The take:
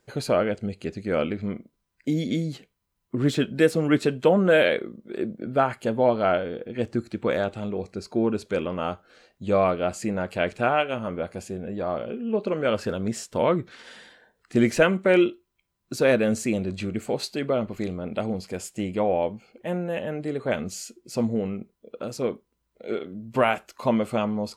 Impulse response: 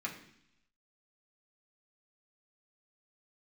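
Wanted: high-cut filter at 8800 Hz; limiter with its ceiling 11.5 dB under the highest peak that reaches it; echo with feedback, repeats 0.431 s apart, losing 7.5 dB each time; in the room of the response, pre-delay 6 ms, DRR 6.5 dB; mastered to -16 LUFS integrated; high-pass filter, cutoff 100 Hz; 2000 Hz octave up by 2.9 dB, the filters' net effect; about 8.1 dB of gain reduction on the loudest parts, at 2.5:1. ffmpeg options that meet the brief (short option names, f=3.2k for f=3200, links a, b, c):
-filter_complex "[0:a]highpass=100,lowpass=8.8k,equalizer=f=2k:t=o:g=4,acompressor=threshold=-26dB:ratio=2.5,alimiter=limit=-23.5dB:level=0:latency=1,aecho=1:1:431|862|1293|1724|2155:0.422|0.177|0.0744|0.0312|0.0131,asplit=2[a][b];[1:a]atrim=start_sample=2205,adelay=6[c];[b][c]afir=irnorm=-1:irlink=0,volume=-9dB[d];[a][d]amix=inputs=2:normalize=0,volume=17dB"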